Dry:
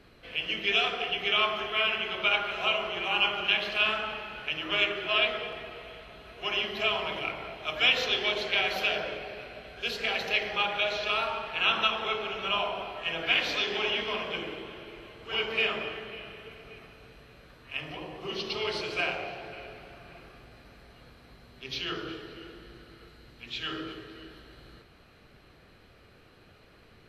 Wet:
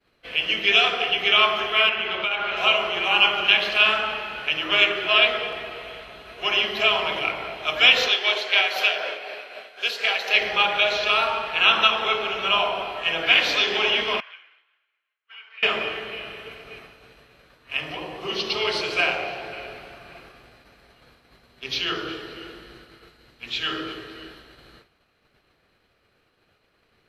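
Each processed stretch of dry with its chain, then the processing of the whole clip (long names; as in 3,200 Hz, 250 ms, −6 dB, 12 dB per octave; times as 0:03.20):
0:01.89–0:02.57: low-pass filter 4,100 Hz + downward compressor 5 to 1, threshold −29 dBFS
0:08.08–0:10.35: high-pass filter 470 Hz + amplitude tremolo 4 Hz, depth 37%
0:14.20–0:15.63: downward compressor, threshold −33 dBFS + four-pole ladder band-pass 2,000 Hz, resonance 30%
whole clip: downward expander −46 dBFS; low-shelf EQ 310 Hz −7.5 dB; level +8.5 dB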